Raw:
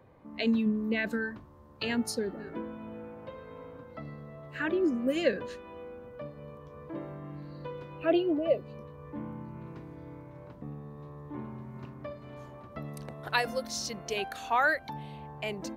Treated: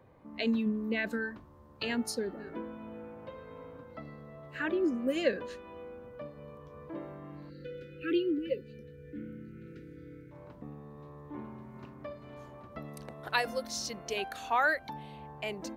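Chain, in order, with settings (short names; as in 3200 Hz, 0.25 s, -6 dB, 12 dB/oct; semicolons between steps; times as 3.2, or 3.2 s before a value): spectral delete 7.49–10.32, 540–1300 Hz; dynamic EQ 120 Hz, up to -6 dB, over -51 dBFS, Q 1.4; gain -1.5 dB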